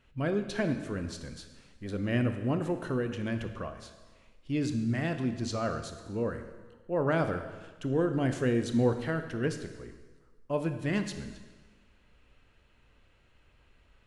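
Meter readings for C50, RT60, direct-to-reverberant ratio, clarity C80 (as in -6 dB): 9.0 dB, 1.3 s, 7.5 dB, 10.5 dB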